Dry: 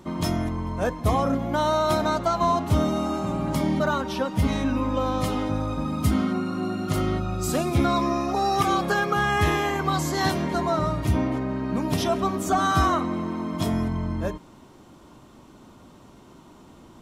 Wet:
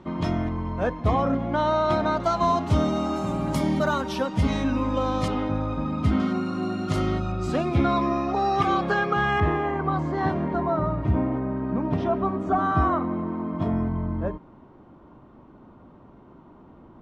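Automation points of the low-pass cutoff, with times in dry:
3.1 kHz
from 2.20 s 6.2 kHz
from 3.16 s 12 kHz
from 4.26 s 6.6 kHz
from 5.28 s 3.1 kHz
from 6.20 s 6.5 kHz
from 7.32 s 3.2 kHz
from 9.40 s 1.4 kHz

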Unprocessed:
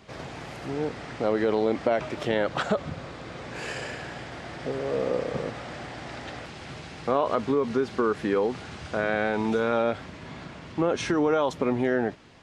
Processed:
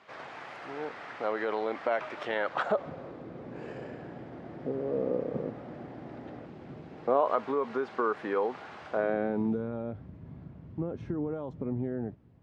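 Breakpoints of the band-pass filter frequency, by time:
band-pass filter, Q 0.9
2.45 s 1.3 kHz
3.29 s 270 Hz
6.85 s 270 Hz
7.31 s 940 Hz
8.86 s 940 Hz
9.13 s 370 Hz
9.70 s 100 Hz

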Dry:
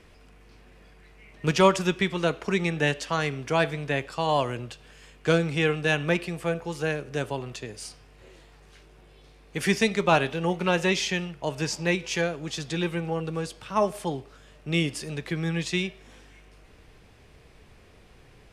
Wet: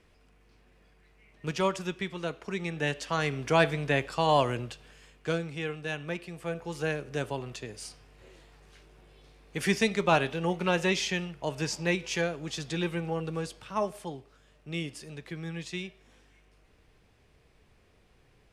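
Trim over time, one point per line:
2.52 s -9 dB
3.48 s +0.5 dB
4.57 s +0.5 dB
5.53 s -10.5 dB
6.22 s -10.5 dB
6.78 s -3 dB
13.43 s -3 dB
14.19 s -9.5 dB

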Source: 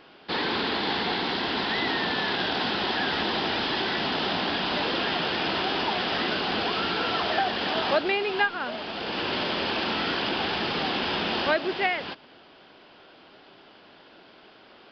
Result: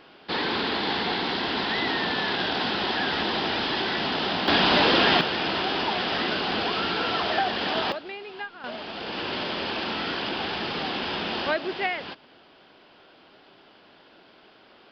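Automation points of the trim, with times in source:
+0.5 dB
from 4.48 s +7.5 dB
from 5.21 s +0.5 dB
from 7.92 s -12 dB
from 8.64 s -2 dB

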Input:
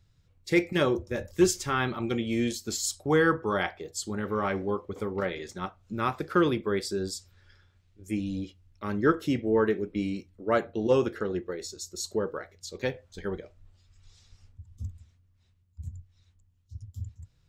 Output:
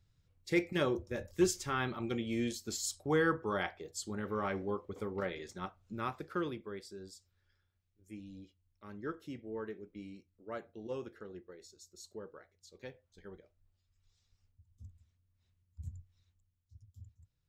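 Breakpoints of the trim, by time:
5.81 s -7 dB
6.89 s -17.5 dB
14.67 s -17.5 dB
15.86 s -5 dB
16.76 s -16 dB

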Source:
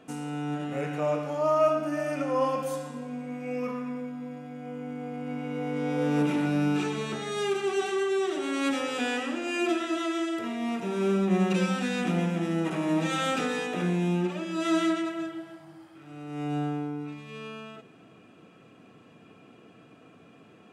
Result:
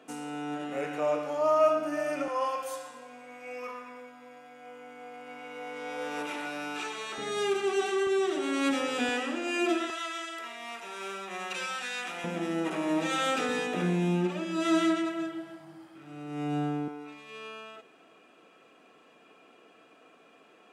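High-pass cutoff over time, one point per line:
310 Hz
from 2.28 s 710 Hz
from 7.18 s 230 Hz
from 8.07 s 110 Hz
from 9.09 s 240 Hz
from 9.90 s 950 Hz
from 12.24 s 290 Hz
from 13.49 s 130 Hz
from 16.88 s 450 Hz

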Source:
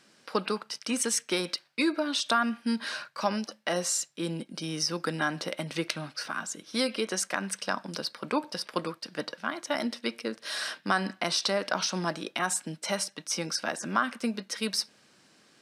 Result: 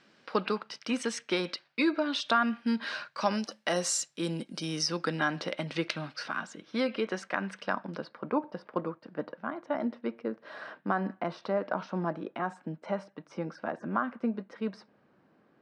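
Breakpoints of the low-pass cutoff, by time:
2.86 s 3.7 kHz
3.54 s 9 kHz
4.71 s 9 kHz
5.12 s 4.2 kHz
6.26 s 4.2 kHz
6.72 s 2.4 kHz
7.61 s 2.4 kHz
8.38 s 1.1 kHz

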